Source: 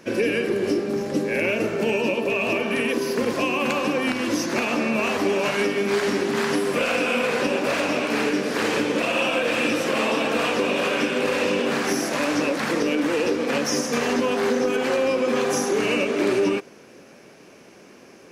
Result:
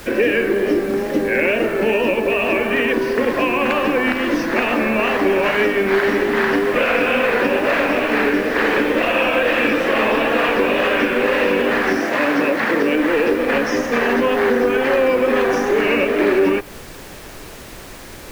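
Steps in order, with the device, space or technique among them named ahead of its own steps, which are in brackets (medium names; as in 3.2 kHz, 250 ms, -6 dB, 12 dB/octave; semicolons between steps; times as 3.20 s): horn gramophone (band-pass 220–4300 Hz; peaking EQ 1.8 kHz +6.5 dB 0.41 oct; wow and flutter; pink noise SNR 20 dB); 11.97–12.95 s: high-pass 96 Hz 12 dB/octave; dynamic bell 5.7 kHz, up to -7 dB, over -44 dBFS, Q 0.73; trim +6 dB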